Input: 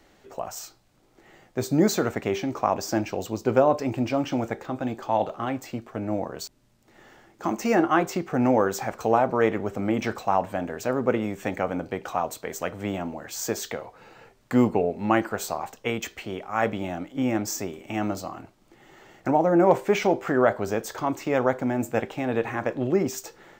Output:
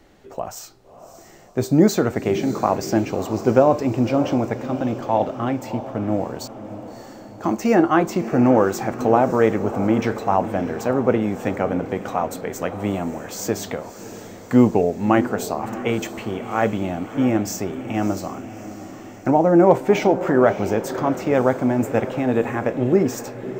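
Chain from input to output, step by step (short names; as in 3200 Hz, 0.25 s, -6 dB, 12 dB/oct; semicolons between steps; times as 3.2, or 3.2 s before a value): tilt shelf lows +3 dB, about 670 Hz; on a send: diffused feedback echo 0.63 s, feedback 54%, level -12.5 dB; on the sum: gain +4 dB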